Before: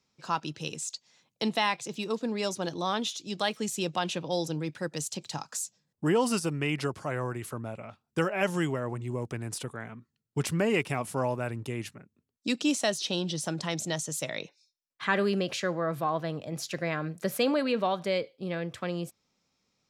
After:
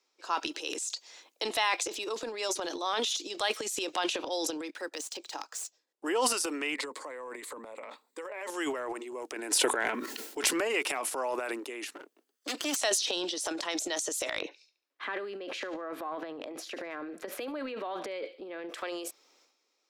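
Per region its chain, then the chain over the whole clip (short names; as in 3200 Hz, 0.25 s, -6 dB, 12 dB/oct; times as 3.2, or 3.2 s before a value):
4.7–6.05 median filter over 3 samples + upward expander, over -53 dBFS
6.74–8.5 ripple EQ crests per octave 1, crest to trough 10 dB + compressor 4:1, threshold -37 dBFS
9.36–10.53 Butterworth band-stop 1200 Hz, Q 7.2 + low shelf 140 Hz +9.5 dB + fast leveller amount 70%
11.95–12.76 minimum comb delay 0.64 ms + HPF 200 Hz
14.39–18.69 tone controls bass +15 dB, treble -13 dB + compressor 10:1, threshold -27 dBFS + thin delay 71 ms, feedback 42%, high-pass 2200 Hz, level -18 dB
whole clip: steep high-pass 300 Hz 48 dB/oct; dynamic EQ 380 Hz, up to -5 dB, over -40 dBFS, Q 0.72; transient shaper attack 0 dB, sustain +12 dB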